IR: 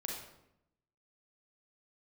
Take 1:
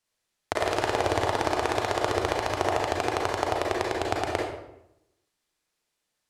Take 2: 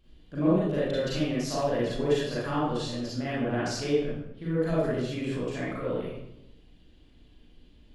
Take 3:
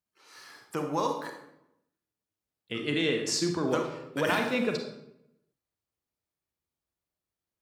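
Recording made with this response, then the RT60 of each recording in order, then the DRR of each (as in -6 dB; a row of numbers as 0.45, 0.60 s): 1; 0.80, 0.80, 0.80 s; -1.5, -8.5, 3.5 dB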